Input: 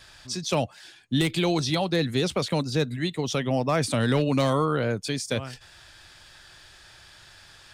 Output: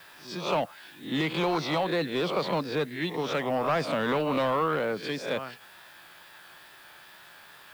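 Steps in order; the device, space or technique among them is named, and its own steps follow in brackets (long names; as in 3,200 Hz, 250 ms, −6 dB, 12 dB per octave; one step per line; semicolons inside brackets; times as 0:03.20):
peak hold with a rise ahead of every peak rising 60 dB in 0.39 s
tape answering machine (band-pass filter 330–3,200 Hz; soft clipping −21 dBFS, distortion −15 dB; tape wow and flutter; white noise bed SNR 27 dB)
graphic EQ with 15 bands 160 Hz +7 dB, 1,000 Hz +4 dB, 6,300 Hz −4 dB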